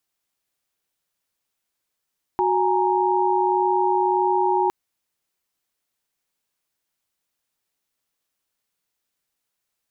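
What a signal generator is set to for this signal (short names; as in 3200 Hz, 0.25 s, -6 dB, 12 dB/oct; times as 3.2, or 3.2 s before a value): chord F#4/G#5/A#5 sine, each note -21.5 dBFS 2.31 s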